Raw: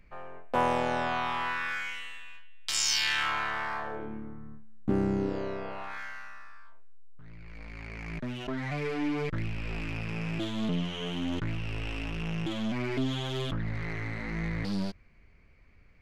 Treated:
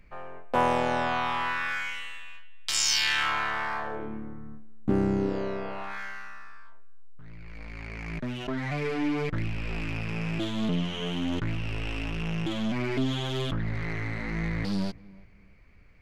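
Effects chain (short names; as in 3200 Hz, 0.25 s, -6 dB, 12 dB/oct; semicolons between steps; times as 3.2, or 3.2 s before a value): darkening echo 0.331 s, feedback 26%, low-pass 860 Hz, level -21.5 dB; gain +2.5 dB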